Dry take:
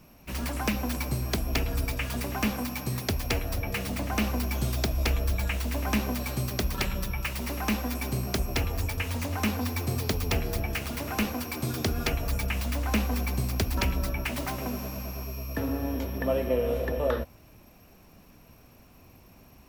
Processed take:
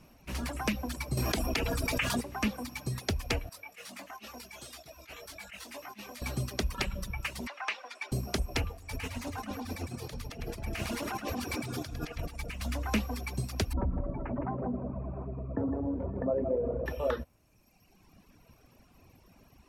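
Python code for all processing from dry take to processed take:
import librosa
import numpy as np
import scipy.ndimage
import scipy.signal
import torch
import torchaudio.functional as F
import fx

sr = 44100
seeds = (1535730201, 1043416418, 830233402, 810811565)

y = fx.chain(x, sr, fx.low_shelf(hz=110.0, db=-10.5),
    fx.env_flatten(amount_pct=100), at=(1.17, 2.21))
y = fx.chain(y, sr, fx.highpass(hz=980.0, slope=6),
    fx.over_compress(threshold_db=-36.0, ratio=-0.5),
    fx.detune_double(cents=17), at=(3.49, 6.22))
y = fx.chain(y, sr, fx.bandpass_edges(low_hz=540.0, high_hz=2300.0),
    fx.tilt_eq(slope=4.5), at=(7.47, 8.12))
y = fx.chain(y, sr, fx.over_compress(threshold_db=-34.0, ratio=-1.0),
    fx.echo_split(split_hz=730.0, low_ms=225, high_ms=105, feedback_pct=52, wet_db=-4), at=(8.73, 12.62))
y = fx.chain(y, sr, fx.bessel_lowpass(hz=780.0, order=4),
    fx.echo_single(ms=161, db=-6.0),
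    fx.env_flatten(amount_pct=50), at=(13.73, 16.86))
y = fx.dereverb_blind(y, sr, rt60_s=1.5)
y = scipy.signal.sosfilt(scipy.signal.butter(2, 11000.0, 'lowpass', fs=sr, output='sos'), y)
y = F.gain(torch.from_numpy(y), -2.0).numpy()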